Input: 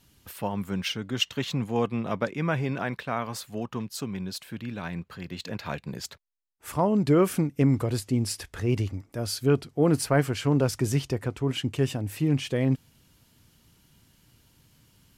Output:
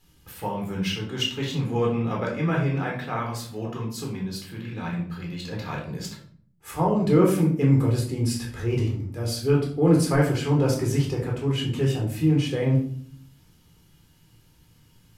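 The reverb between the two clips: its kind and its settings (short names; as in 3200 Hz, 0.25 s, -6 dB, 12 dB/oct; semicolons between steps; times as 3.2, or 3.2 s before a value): shoebox room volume 660 m³, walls furnished, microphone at 4 m; gain -4.5 dB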